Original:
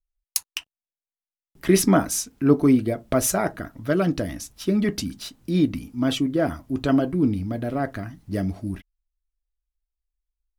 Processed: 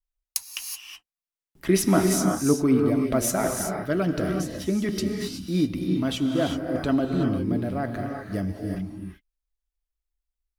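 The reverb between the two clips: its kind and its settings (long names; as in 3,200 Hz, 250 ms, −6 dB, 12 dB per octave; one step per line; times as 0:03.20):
reverb whose tail is shaped and stops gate 400 ms rising, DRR 2.5 dB
level −3.5 dB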